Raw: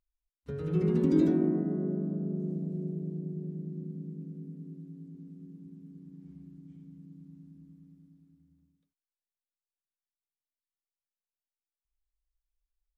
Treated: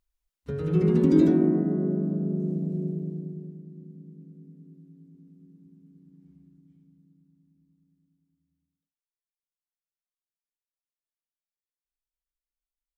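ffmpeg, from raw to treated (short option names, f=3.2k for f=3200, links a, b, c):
-af "volume=5.5dB,afade=t=out:st=2.84:d=0.77:silence=0.281838,afade=t=out:st=6.25:d=1.06:silence=0.421697"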